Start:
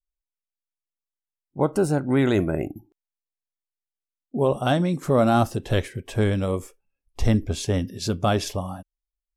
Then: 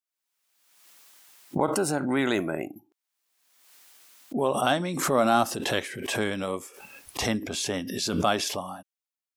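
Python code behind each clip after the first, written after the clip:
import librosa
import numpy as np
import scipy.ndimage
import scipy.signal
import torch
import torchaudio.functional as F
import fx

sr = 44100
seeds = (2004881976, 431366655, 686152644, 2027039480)

y = scipy.signal.sosfilt(scipy.signal.butter(2, 310.0, 'highpass', fs=sr, output='sos'), x)
y = fx.peak_eq(y, sr, hz=450.0, db=-6.5, octaves=1.2)
y = fx.pre_swell(y, sr, db_per_s=45.0)
y = F.gain(torch.from_numpy(y), 1.5).numpy()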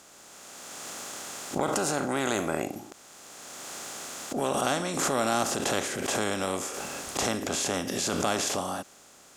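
y = fx.bin_compress(x, sr, power=0.4)
y = fx.peak_eq(y, sr, hz=7000.0, db=9.5, octaves=0.51)
y = F.gain(torch.from_numpy(y), -8.5).numpy()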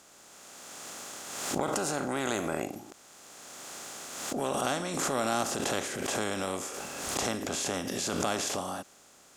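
y = fx.pre_swell(x, sr, db_per_s=40.0)
y = F.gain(torch.from_numpy(y), -3.5).numpy()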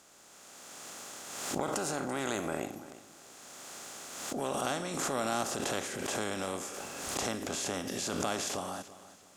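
y = fx.echo_feedback(x, sr, ms=337, feedback_pct=31, wet_db=-16.5)
y = F.gain(torch.from_numpy(y), -3.0).numpy()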